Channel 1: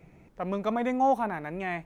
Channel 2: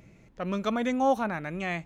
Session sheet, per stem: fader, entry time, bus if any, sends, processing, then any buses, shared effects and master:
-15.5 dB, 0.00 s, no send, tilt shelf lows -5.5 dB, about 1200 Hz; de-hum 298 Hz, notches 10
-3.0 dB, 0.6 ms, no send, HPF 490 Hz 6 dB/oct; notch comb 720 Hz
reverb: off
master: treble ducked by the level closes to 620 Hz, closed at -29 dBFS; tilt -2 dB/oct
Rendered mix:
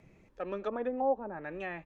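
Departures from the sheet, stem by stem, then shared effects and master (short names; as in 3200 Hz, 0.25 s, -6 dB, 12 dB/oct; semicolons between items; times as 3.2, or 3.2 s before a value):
stem 1 -15.5 dB -> -9.0 dB; stem 2: polarity flipped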